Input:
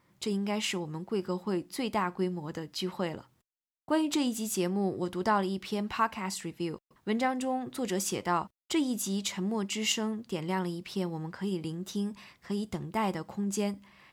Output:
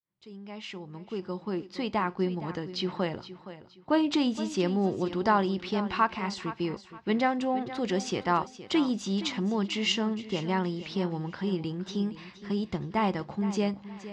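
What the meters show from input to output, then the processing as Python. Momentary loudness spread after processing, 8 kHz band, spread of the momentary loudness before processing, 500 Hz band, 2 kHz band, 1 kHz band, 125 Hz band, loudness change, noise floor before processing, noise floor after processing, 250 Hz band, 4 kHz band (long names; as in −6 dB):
13 LU, −8.0 dB, 7 LU, +2.5 dB, +2.5 dB, +3.0 dB, +2.5 dB, +2.5 dB, below −85 dBFS, −54 dBFS, +2.5 dB, +2.0 dB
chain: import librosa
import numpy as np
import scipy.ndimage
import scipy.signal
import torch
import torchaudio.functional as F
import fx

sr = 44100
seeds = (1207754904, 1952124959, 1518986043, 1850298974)

y = fx.fade_in_head(x, sr, length_s=2.4)
y = scipy.signal.sosfilt(scipy.signal.butter(4, 5200.0, 'lowpass', fs=sr, output='sos'), y)
y = fx.echo_feedback(y, sr, ms=468, feedback_pct=30, wet_db=-14)
y = y * librosa.db_to_amplitude(3.0)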